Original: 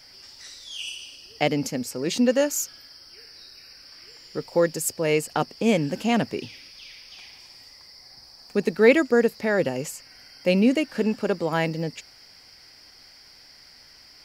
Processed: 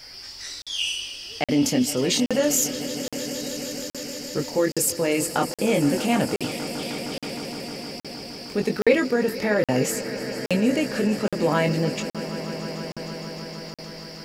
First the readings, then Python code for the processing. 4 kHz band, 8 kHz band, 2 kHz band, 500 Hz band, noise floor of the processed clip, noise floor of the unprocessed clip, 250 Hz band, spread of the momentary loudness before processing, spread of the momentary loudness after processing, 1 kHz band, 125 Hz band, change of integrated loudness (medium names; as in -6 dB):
+5.5 dB, +6.5 dB, +0.5 dB, 0.0 dB, -44 dBFS, -51 dBFS, +1.5 dB, 22 LU, 13 LU, +1.5 dB, +2.5 dB, -0.5 dB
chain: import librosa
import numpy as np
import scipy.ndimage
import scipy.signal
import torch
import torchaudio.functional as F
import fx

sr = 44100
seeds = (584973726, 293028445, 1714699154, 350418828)

p1 = fx.over_compress(x, sr, threshold_db=-28.0, ratio=-1.0)
p2 = x + (p1 * 10.0 ** (1.5 / 20.0))
p3 = fx.chorus_voices(p2, sr, voices=4, hz=0.23, base_ms=22, depth_ms=2.1, mix_pct=40)
p4 = fx.echo_swell(p3, sr, ms=155, loudest=5, wet_db=-17.0)
y = fx.buffer_crackle(p4, sr, first_s=0.62, period_s=0.82, block=2048, kind='zero')